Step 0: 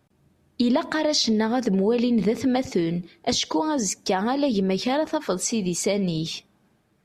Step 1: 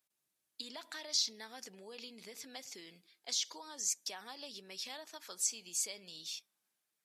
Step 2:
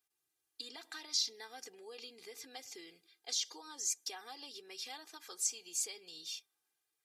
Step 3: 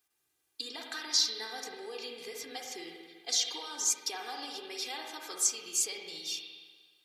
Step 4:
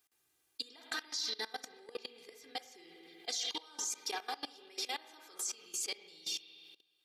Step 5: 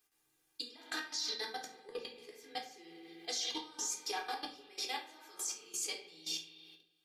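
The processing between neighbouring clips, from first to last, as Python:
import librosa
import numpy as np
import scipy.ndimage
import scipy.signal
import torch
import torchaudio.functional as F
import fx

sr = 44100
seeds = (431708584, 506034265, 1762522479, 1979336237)

y1 = np.diff(x, prepend=0.0)
y1 = y1 * librosa.db_to_amplitude(-6.0)
y2 = y1 + 0.82 * np.pad(y1, (int(2.5 * sr / 1000.0), 0))[:len(y1)]
y2 = y2 * librosa.db_to_amplitude(-3.0)
y3 = fx.rev_spring(y2, sr, rt60_s=1.5, pass_ms=(49, 60), chirp_ms=45, drr_db=1.0)
y3 = y3 * librosa.db_to_amplitude(6.5)
y4 = fx.level_steps(y3, sr, step_db=20)
y4 = y4 * librosa.db_to_amplitude(3.0)
y5 = fx.room_shoebox(y4, sr, seeds[0], volume_m3=37.0, walls='mixed', distance_m=0.53)
y5 = y5 * librosa.db_to_amplitude(-2.5)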